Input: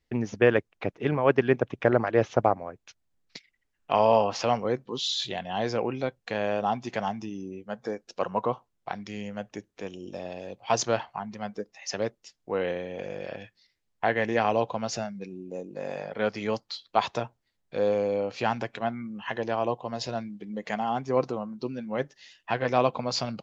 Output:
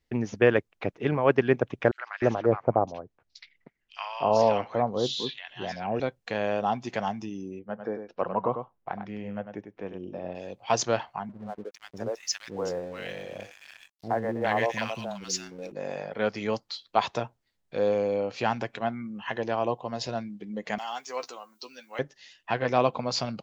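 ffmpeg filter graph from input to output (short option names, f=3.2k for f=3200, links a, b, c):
-filter_complex "[0:a]asettb=1/sr,asplit=3[a][b][c];[a]atrim=end=1.914[d];[b]atrim=start=1.91:end=6,asetpts=PTS-STARTPTS,afade=t=in:d=0.004:c=qsin,afade=t=out:st=4.086:d=0.004:c=qsin,lowpass=5.6k,acrossover=split=1200|4000[e][f][g];[f]adelay=70[h];[e]adelay=310[i];[i][h][g]amix=inputs=3:normalize=0,atrim=end_sample=180369[j];[c]atrim=start=5.996[k];[d][j]acrossfade=d=0.004:c1=hsin:c2=qsin[l];[l][k]acrossfade=d=0.004:c1=qsin:c2=hsin,asettb=1/sr,asplit=3[m][n][o];[m]atrim=end=7.594[p];[n]atrim=start=7.59:end=10.35,asetpts=PTS-STARTPTS,afade=t=in:d=0.004:c=qsin,afade=t=out:st=2.756:d=0.004:c=qsin,lowpass=1.8k,aecho=1:1:99:0.398,atrim=end_sample=121716[q];[o]atrim=start=10.346[r];[p][q]acrossfade=d=0.004:c1=hsin:c2=qsin[s];[s][r]acrossfade=d=0.004:c1=qsin:c2=hsin,asettb=1/sr,asplit=3[t][u][v];[t]atrim=end=11.294[w];[u]atrim=start=11.29:end=15.72,asetpts=PTS-STARTPTS,afade=t=in:d=0.004:c=qsin,afade=t=out:st=4.426:d=0.004:c=qsin,highshelf=f=6k:g=12,acrossover=split=370|1300[x][y][z];[y]adelay=70[aa];[z]adelay=410[ab];[x][aa][ab]amix=inputs=3:normalize=0,atrim=end_sample=195363,aeval=exprs='sgn(val(0))*max(abs(val(0))-0.00224,0)':c=same[ac];[v]atrim=start=15.716[ad];[w][ac]acrossfade=d=0.004:c1=hsin:c2=qsin[ae];[ae][ad]acrossfade=d=0.004:c1=qsin:c2=hsin,asettb=1/sr,asplit=3[af][ag][ah];[af]atrim=end=20.784[ai];[ag]atrim=start=20.78:end=21.99,asetpts=PTS-STARTPTS,afade=t=in:d=0.004:c=qsin,afade=t=out:st=1.206:d=0.004:c=qsin,highpass=f=1.4k:p=1,aemphasis=mode=production:type=riaa,asplit=2[aj][ak];[ak]adelay=12,volume=-9dB[al];[aj][al]amix=inputs=2:normalize=0,atrim=end_sample=53361[am];[ah]atrim=start=21.986[an];[ai][am]acrossfade=d=0.004:c1=hsin:c2=qsin[ao];[ao][an]acrossfade=d=0.004:c1=qsin:c2=hsin"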